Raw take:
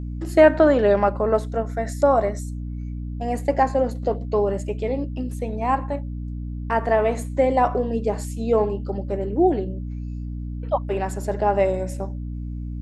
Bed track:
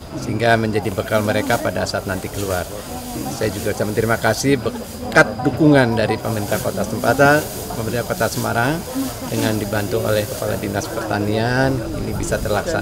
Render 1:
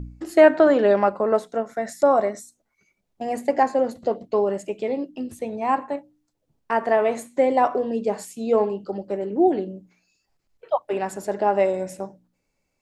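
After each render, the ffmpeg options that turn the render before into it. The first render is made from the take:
-af "bandreject=f=60:t=h:w=4,bandreject=f=120:t=h:w=4,bandreject=f=180:t=h:w=4,bandreject=f=240:t=h:w=4,bandreject=f=300:t=h:w=4"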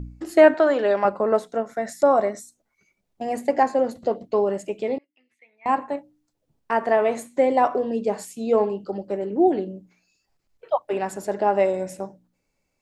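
-filter_complex "[0:a]asettb=1/sr,asplit=3[s0][s1][s2];[s0]atrim=end=0.544[s3];[s1]atrim=start=0.54:end=1.05,asetpts=PTS-STARTPTS,afade=t=in:d=0.004:c=qsin,afade=t=out:st=0.506:d=0.004:c=qsin,highpass=f=510:p=1[s4];[s2]atrim=start=1.046[s5];[s3][s4]acrossfade=d=0.004:c1=hsin:c2=qsin[s6];[s6][s5]acrossfade=d=0.004:c1=qsin:c2=hsin,asettb=1/sr,asplit=3[s7][s8][s9];[s7]atrim=end=4.984[s10];[s8]atrim=start=4.98:end=5.66,asetpts=PTS-STARTPTS,afade=t=in:d=0.004:c=qsin,afade=t=out:st=0.676:d=0.004:c=qsin,bandpass=f=2100:t=q:w=11[s11];[s9]atrim=start=5.656[s12];[s10][s11]acrossfade=d=0.004:c1=hsin:c2=qsin[s13];[s13][s12]acrossfade=d=0.004:c1=qsin:c2=hsin"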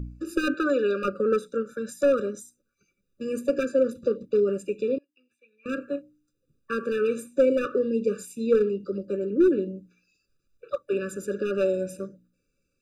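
-af "volume=3.98,asoftclip=hard,volume=0.251,afftfilt=real='re*eq(mod(floor(b*sr/1024/580),2),0)':imag='im*eq(mod(floor(b*sr/1024/580),2),0)':win_size=1024:overlap=0.75"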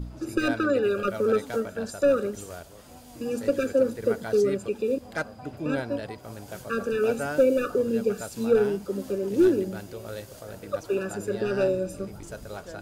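-filter_complex "[1:a]volume=0.112[s0];[0:a][s0]amix=inputs=2:normalize=0"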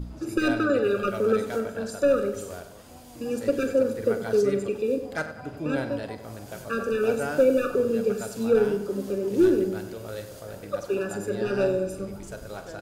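-filter_complex "[0:a]asplit=2[s0][s1];[s1]adelay=45,volume=0.251[s2];[s0][s2]amix=inputs=2:normalize=0,asplit=2[s3][s4];[s4]adelay=96,lowpass=f=3900:p=1,volume=0.282,asplit=2[s5][s6];[s6]adelay=96,lowpass=f=3900:p=1,volume=0.51,asplit=2[s7][s8];[s8]adelay=96,lowpass=f=3900:p=1,volume=0.51,asplit=2[s9][s10];[s10]adelay=96,lowpass=f=3900:p=1,volume=0.51,asplit=2[s11][s12];[s12]adelay=96,lowpass=f=3900:p=1,volume=0.51[s13];[s3][s5][s7][s9][s11][s13]amix=inputs=6:normalize=0"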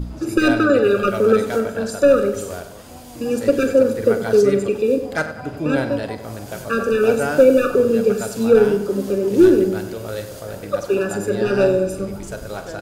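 -af "volume=2.51"

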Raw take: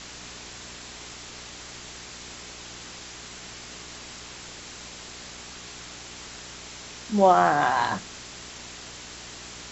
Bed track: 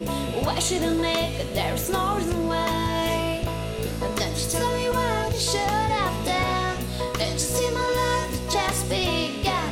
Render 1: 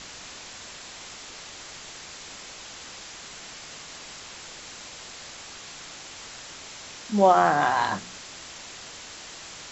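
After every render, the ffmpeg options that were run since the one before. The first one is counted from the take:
-af "bandreject=f=60:t=h:w=4,bandreject=f=120:t=h:w=4,bandreject=f=180:t=h:w=4,bandreject=f=240:t=h:w=4,bandreject=f=300:t=h:w=4,bandreject=f=360:t=h:w=4,bandreject=f=420:t=h:w=4"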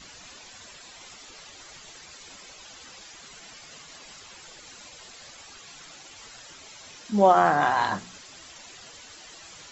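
-af "afftdn=nr=12:nf=-43"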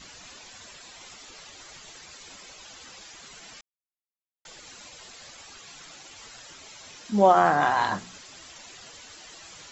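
-filter_complex "[0:a]asplit=3[s0][s1][s2];[s0]atrim=end=3.61,asetpts=PTS-STARTPTS,afade=t=out:st=3.606:d=0.004:c=hsin[s3];[s1]atrim=start=3.61:end=4.45,asetpts=PTS-STARTPTS,volume=0[s4];[s2]atrim=start=4.45,asetpts=PTS-STARTPTS,afade=t=in:d=0.004:c=hsin[s5];[s3][s4][s5]concat=n=3:v=0:a=1"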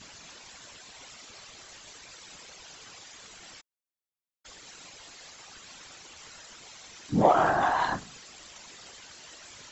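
-filter_complex "[0:a]asplit=2[s0][s1];[s1]asoftclip=type=tanh:threshold=0.158,volume=0.562[s2];[s0][s2]amix=inputs=2:normalize=0,afftfilt=real='hypot(re,im)*cos(2*PI*random(0))':imag='hypot(re,im)*sin(2*PI*random(1))':win_size=512:overlap=0.75"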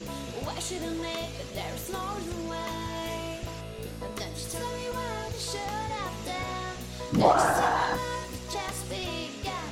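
-filter_complex "[1:a]volume=0.316[s0];[0:a][s0]amix=inputs=2:normalize=0"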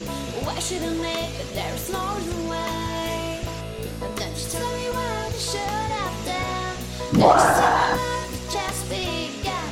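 -af "volume=2.24,alimiter=limit=0.794:level=0:latency=1"

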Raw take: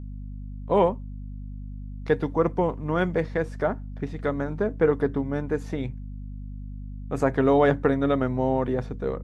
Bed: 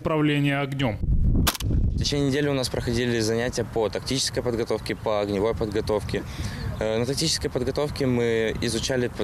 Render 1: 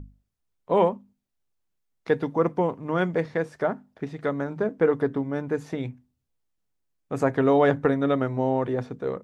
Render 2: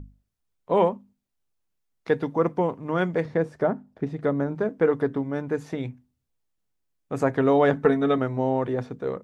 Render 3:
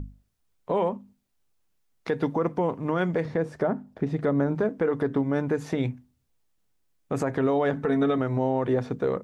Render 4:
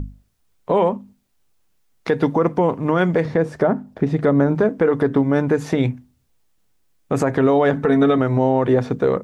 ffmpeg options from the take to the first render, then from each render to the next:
-af "bandreject=f=50:t=h:w=6,bandreject=f=100:t=h:w=6,bandreject=f=150:t=h:w=6,bandreject=f=200:t=h:w=6,bandreject=f=250:t=h:w=6"
-filter_complex "[0:a]asettb=1/sr,asplit=3[s0][s1][s2];[s0]atrim=end=3.254[s3];[s1]atrim=start=3.25:end=4.55,asetpts=PTS-STARTPTS,afade=t=in:d=0.004:c=qsin,afade=t=out:st=1.296:d=0.004:c=qsin,tiltshelf=f=890:g=5[s4];[s2]atrim=start=4.546[s5];[s3][s4]acrossfade=d=0.004:c1=hsin:c2=qsin[s6];[s6][s5]acrossfade=d=0.004:c1=qsin:c2=hsin,asettb=1/sr,asplit=3[s7][s8][s9];[s7]atrim=end=7.734[s10];[s8]atrim=start=7.73:end=8.18,asetpts=PTS-STARTPTS,afade=t=in:d=0.004:c=qsin,afade=t=out:st=0.446:d=0.004:c=qsin,aecho=1:1:4.6:0.65,atrim=end_sample=19845[s11];[s9]atrim=start=8.176[s12];[s10][s11]acrossfade=d=0.004:c1=hsin:c2=qsin[s13];[s13][s12]acrossfade=d=0.004:c1=qsin:c2=hsin"
-filter_complex "[0:a]asplit=2[s0][s1];[s1]acompressor=threshold=0.0398:ratio=6,volume=1[s2];[s0][s2]amix=inputs=2:normalize=0,alimiter=limit=0.178:level=0:latency=1:release=82"
-af "volume=2.51"

